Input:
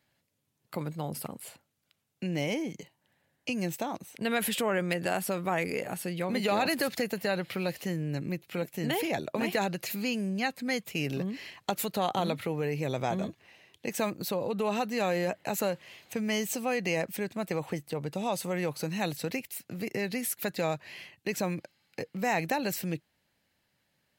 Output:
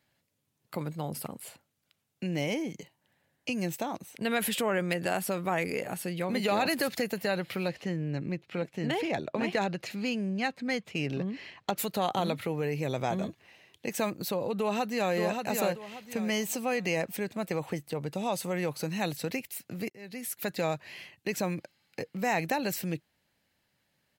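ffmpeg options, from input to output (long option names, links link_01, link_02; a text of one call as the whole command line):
ffmpeg -i in.wav -filter_complex "[0:a]asettb=1/sr,asplit=3[link_01][link_02][link_03];[link_01]atrim=end=7.684[link_04];[link_02]atrim=start=7.68:end=11.78,asetpts=PTS-STARTPTS,afade=type=in:duration=0.004:curve=qsin,afade=type=out:start_time=4.096:duration=0.004:curve=qsin,adynamicsmooth=sensitivity=3.5:basefreq=4800[link_05];[link_03]atrim=start=11.776[link_06];[link_04][link_05]acrossfade=duration=0.004:curve1=hsin:curve2=qsin[link_07];[link_07][link_06]acrossfade=duration=0.004:curve1=qsin:curve2=hsin,asplit=2[link_08][link_09];[link_09]afade=type=in:start_time=14.58:duration=0.01,afade=type=out:start_time=15.14:duration=0.01,aecho=0:1:580|1160|1740|2320:0.595662|0.178699|0.0536096|0.0160829[link_10];[link_08][link_10]amix=inputs=2:normalize=0,asplit=2[link_11][link_12];[link_11]atrim=end=19.9,asetpts=PTS-STARTPTS,afade=type=out:start_time=19.896:duration=0.004:curve=hsin[link_13];[link_12]atrim=start=19.9,asetpts=PTS-STARTPTS,afade=type=in:duration=0.61[link_14];[link_13][link_14]concat=n=2:v=0:a=1" out.wav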